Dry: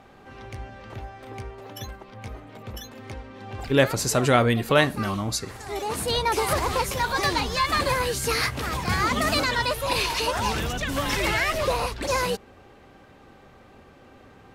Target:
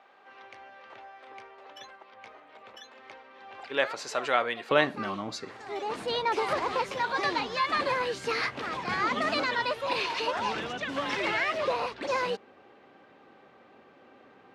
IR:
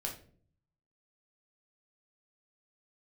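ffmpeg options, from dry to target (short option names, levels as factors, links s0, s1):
-af "asetnsamples=n=441:p=0,asendcmd='4.71 highpass f 250',highpass=640,lowpass=3700,volume=0.668"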